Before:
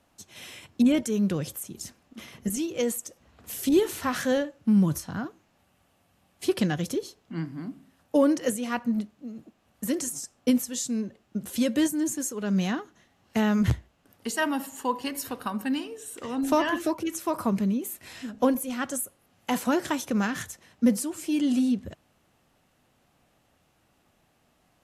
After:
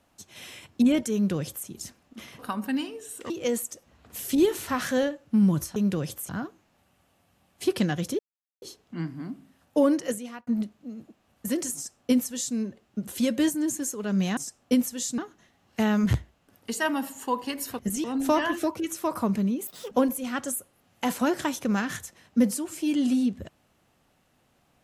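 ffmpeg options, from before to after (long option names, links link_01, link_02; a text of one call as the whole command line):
ffmpeg -i in.wav -filter_complex "[0:a]asplit=13[link_01][link_02][link_03][link_04][link_05][link_06][link_07][link_08][link_09][link_10][link_11][link_12][link_13];[link_01]atrim=end=2.392[link_14];[link_02]atrim=start=15.358:end=16.272[link_15];[link_03]atrim=start=2.638:end=5.102[link_16];[link_04]atrim=start=1.138:end=1.672[link_17];[link_05]atrim=start=5.098:end=7,asetpts=PTS-STARTPTS,afade=type=out:start_time=1.898:duration=0.004:curve=hsin,apad=pad_dur=0.43[link_18];[link_06]atrim=start=7:end=8.85,asetpts=PTS-STARTPTS,afade=type=in:duration=0.004:curve=hsin,afade=type=out:start_time=1.15:duration=0.7:curve=qsin[link_19];[link_07]atrim=start=8.85:end=12.752,asetpts=PTS-STARTPTS,afade=type=in:duration=0.004:curve=hsin[link_20];[link_08]atrim=start=10.128:end=10.942[link_21];[link_09]atrim=start=12.748:end=15.362[link_22];[link_10]atrim=start=2.388:end=2.642[link_23];[link_11]atrim=start=16.268:end=17.904[link_24];[link_12]atrim=start=17.9:end=18.37,asetpts=PTS-STARTPTS,asetrate=85554,aresample=44100,atrim=end_sample=10684,asetpts=PTS-STARTPTS[link_25];[link_13]atrim=start=18.366[link_26];[link_14][link_15]acrossfade=duration=0.004:curve1=hsin:curve2=hsin[link_27];[link_27][link_16]acrossfade=duration=0.004:curve1=hsin:curve2=hsin[link_28];[link_28][link_17]acrossfade=duration=0.004:curve1=hsin:curve2=hsin[link_29];[link_18][link_19][link_20]concat=n=3:v=0:a=1[link_30];[link_29][link_30]acrossfade=duration=0.004:curve1=hsin:curve2=hsin[link_31];[link_31][link_21]acrossfade=duration=0.004:curve1=hsin:curve2=hsin[link_32];[link_32][link_22]acrossfade=duration=0.004:curve1=hsin:curve2=hsin[link_33];[link_33][link_23]acrossfade=duration=0.004:curve1=hsin:curve2=hsin[link_34];[link_34][link_24]acrossfade=duration=0.004:curve1=hsin:curve2=hsin[link_35];[link_35][link_25]acrossfade=duration=0.004:curve1=hsin:curve2=hsin[link_36];[link_36][link_26]acrossfade=duration=0.004:curve1=hsin:curve2=hsin" out.wav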